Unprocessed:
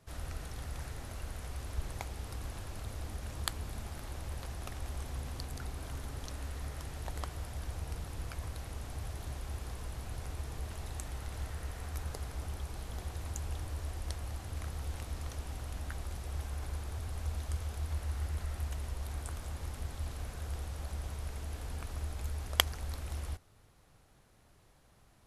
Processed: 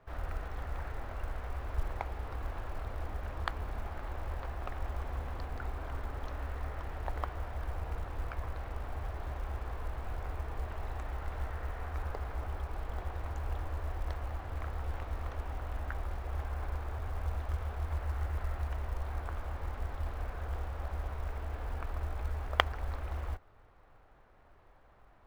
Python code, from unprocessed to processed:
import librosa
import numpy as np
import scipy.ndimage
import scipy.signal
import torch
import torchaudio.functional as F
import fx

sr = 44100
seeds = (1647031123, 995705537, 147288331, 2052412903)

y = scipy.signal.sosfilt(scipy.signal.butter(2, 1500.0, 'lowpass', fs=sr, output='sos'), x)
y = fx.peak_eq(y, sr, hz=150.0, db=-13.0, octaves=2.5)
y = fx.quant_float(y, sr, bits=4)
y = y * librosa.db_to_amplitude(8.5)